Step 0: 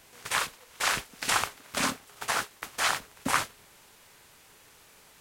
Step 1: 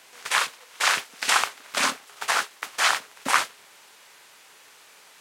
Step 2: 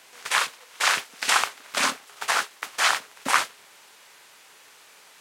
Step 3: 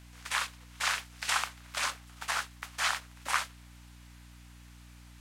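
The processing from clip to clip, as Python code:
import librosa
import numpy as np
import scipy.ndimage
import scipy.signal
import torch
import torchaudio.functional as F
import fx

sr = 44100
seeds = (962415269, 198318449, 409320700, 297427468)

y1 = fx.weighting(x, sr, curve='A')
y1 = F.gain(torch.from_numpy(y1), 5.0).numpy()
y2 = y1
y3 = scipy.signal.sosfilt(scipy.signal.butter(2, 640.0, 'highpass', fs=sr, output='sos'), y2)
y3 = fx.add_hum(y3, sr, base_hz=60, snr_db=16)
y3 = F.gain(torch.from_numpy(y3), -8.5).numpy()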